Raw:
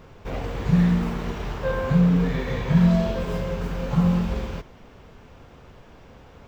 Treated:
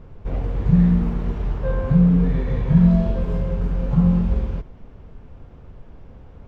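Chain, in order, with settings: tilt -3 dB/oct; gain -4.5 dB

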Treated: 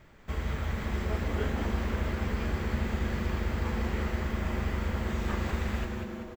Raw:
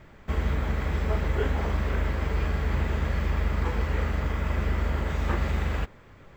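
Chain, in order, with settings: high shelf 3500 Hz +6.5 dB; frequency-shifting echo 0.193 s, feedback 59%, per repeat -140 Hz, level -5 dB; on a send at -13 dB: reverb RT60 2.2 s, pre-delay 41 ms; on the sum: gain -6 dB

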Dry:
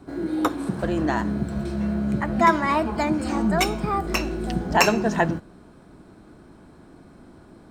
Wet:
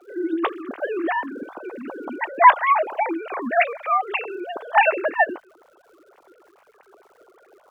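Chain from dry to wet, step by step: sine-wave speech; Bessel high-pass 560 Hz, order 2; crackle 300/s -56 dBFS; gain +3.5 dB

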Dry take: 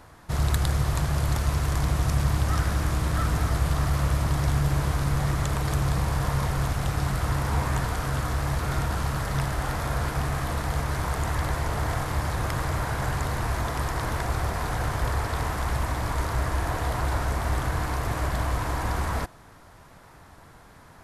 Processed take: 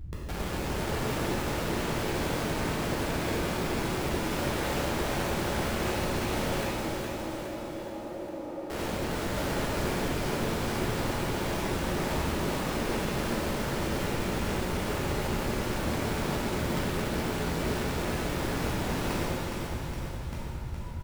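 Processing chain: octaver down 1 oct, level 0 dB; upward compressor, threshold -28 dBFS; limiter -17 dBFS, peak gain reduction 9 dB; compressor 12:1, threshold -26 dBFS, peak gain reduction 6.5 dB; loudest bins only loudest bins 4; wrapped overs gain 33 dB; 6.63–8.7 double band-pass 430 Hz, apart 0.77 oct; feedback echo 0.414 s, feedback 58%, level -5 dB; shimmer reverb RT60 1.4 s, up +7 st, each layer -8 dB, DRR -6 dB

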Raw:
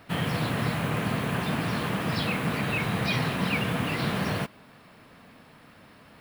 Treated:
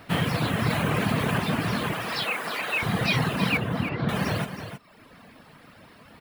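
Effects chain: reverb removal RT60 1.1 s; 1.93–2.83 HPF 540 Hz 12 dB/oct; 3.57–4.09 tape spacing loss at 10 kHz 37 dB; echo 0.318 s -10 dB; 0.7–1.38 fast leveller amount 50%; gain +4.5 dB

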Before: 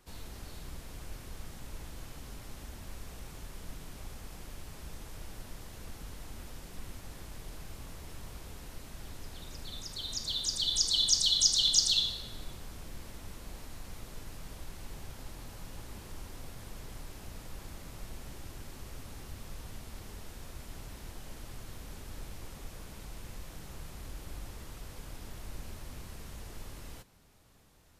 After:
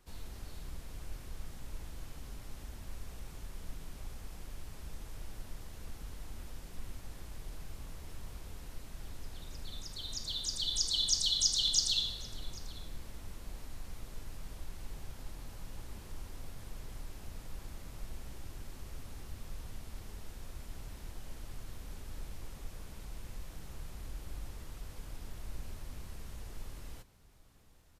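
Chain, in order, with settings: low shelf 64 Hz +7 dB; echo 0.791 s -22 dB; gain -4 dB

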